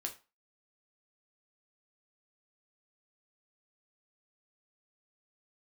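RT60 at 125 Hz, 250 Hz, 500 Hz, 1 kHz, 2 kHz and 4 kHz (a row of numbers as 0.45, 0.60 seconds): 0.25, 0.30, 0.30, 0.35, 0.30, 0.25 seconds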